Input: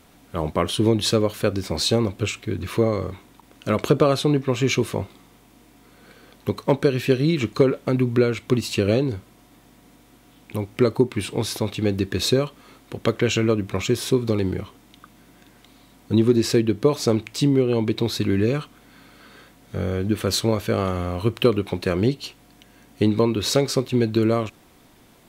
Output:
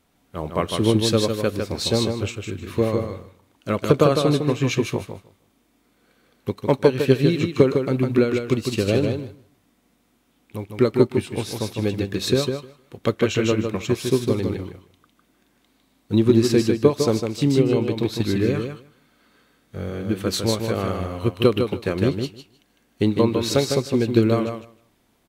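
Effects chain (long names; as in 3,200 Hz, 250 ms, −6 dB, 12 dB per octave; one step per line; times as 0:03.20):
repeating echo 154 ms, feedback 24%, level −4 dB
expander for the loud parts 1.5 to 1, over −40 dBFS
level +2 dB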